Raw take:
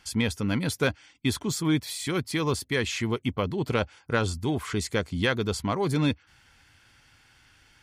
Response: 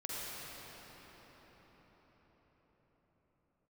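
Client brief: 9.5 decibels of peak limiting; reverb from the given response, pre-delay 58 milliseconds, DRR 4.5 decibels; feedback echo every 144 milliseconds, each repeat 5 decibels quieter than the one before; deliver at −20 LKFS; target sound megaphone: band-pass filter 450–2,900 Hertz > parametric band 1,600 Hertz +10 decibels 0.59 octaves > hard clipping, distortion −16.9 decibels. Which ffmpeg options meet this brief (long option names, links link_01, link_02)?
-filter_complex "[0:a]alimiter=limit=-20.5dB:level=0:latency=1,aecho=1:1:144|288|432|576|720|864|1008:0.562|0.315|0.176|0.0988|0.0553|0.031|0.0173,asplit=2[link_01][link_02];[1:a]atrim=start_sample=2205,adelay=58[link_03];[link_02][link_03]afir=irnorm=-1:irlink=0,volume=-7.5dB[link_04];[link_01][link_04]amix=inputs=2:normalize=0,highpass=450,lowpass=2900,equalizer=frequency=1600:width_type=o:width=0.59:gain=10,asoftclip=type=hard:threshold=-23dB,volume=12dB"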